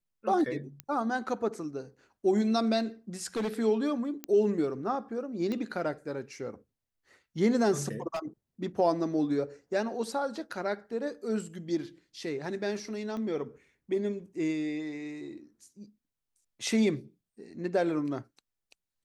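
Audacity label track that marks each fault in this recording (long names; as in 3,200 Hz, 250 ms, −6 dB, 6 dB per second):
0.800000	0.800000	click −21 dBFS
3.240000	3.480000	clipping −27.5 dBFS
4.240000	4.240000	click −18 dBFS
5.520000	5.520000	click −22 dBFS
8.140000	8.200000	clipping −29 dBFS
13.170000	13.170000	click −28 dBFS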